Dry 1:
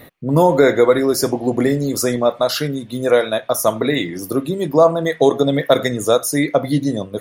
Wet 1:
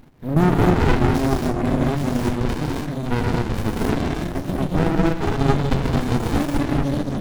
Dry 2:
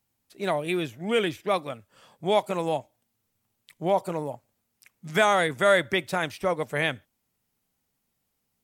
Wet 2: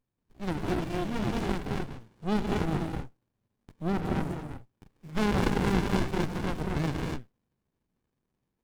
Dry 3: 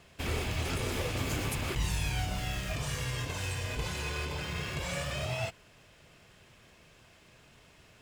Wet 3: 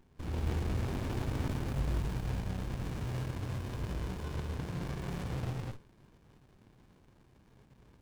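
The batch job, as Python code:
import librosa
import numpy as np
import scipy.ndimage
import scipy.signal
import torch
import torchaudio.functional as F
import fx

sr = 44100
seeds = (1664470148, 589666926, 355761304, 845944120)

y = fx.rev_gated(x, sr, seeds[0], gate_ms=280, shape='rising', drr_db=-3.5)
y = fx.running_max(y, sr, window=65)
y = y * 10.0 ** (-4.0 / 20.0)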